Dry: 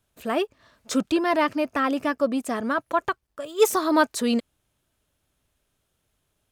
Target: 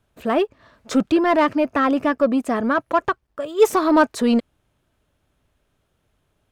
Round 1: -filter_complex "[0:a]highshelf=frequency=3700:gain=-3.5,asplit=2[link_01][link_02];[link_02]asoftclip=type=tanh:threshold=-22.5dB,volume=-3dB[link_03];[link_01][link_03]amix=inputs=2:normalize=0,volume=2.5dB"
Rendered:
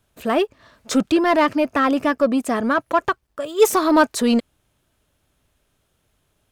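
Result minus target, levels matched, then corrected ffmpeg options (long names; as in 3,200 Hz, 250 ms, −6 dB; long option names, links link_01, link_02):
8,000 Hz band +6.5 dB
-filter_complex "[0:a]highshelf=frequency=3700:gain=-12.5,asplit=2[link_01][link_02];[link_02]asoftclip=type=tanh:threshold=-22.5dB,volume=-3dB[link_03];[link_01][link_03]amix=inputs=2:normalize=0,volume=2.5dB"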